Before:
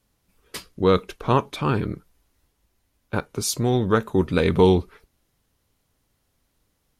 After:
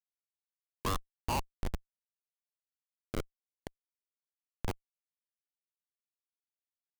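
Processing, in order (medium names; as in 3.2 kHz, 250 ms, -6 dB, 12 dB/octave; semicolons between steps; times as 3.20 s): wah-wah 0.29 Hz 320–1100 Hz, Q 7.9; 3.49–4.68 s: slow attack 160 ms; Schmitt trigger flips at -30 dBFS; trim +11.5 dB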